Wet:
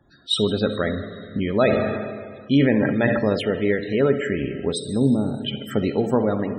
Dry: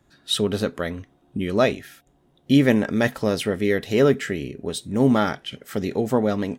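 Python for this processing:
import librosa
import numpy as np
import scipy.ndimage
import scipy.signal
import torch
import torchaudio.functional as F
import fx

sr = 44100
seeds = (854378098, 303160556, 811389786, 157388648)

y = fx.env_lowpass_down(x, sr, base_hz=380.0, full_db=-17.0, at=(4.81, 5.41))
y = fx.rider(y, sr, range_db=5, speed_s=0.5)
y = fx.echo_feedback(y, sr, ms=68, feedback_pct=50, wet_db=-13.5)
y = fx.rev_schroeder(y, sr, rt60_s=2.7, comb_ms=29, drr_db=8.0)
y = fx.spec_topn(y, sr, count=64)
y = fx.sustainer(y, sr, db_per_s=33.0, at=(1.42, 3.19))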